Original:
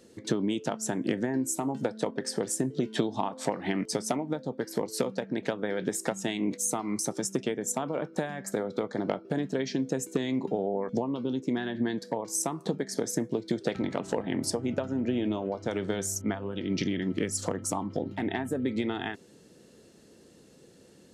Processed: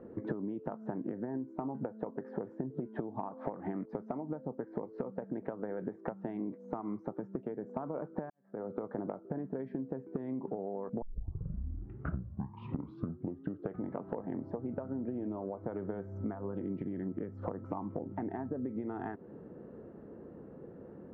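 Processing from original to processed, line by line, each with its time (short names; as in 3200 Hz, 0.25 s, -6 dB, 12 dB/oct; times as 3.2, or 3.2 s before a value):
8.3–9.01 fade in quadratic
11.02 tape start 2.91 s
17.64–18.08 bell 2500 Hz +8.5 dB
whole clip: LPF 1300 Hz 24 dB/oct; compressor 12:1, threshold -41 dBFS; gain +7 dB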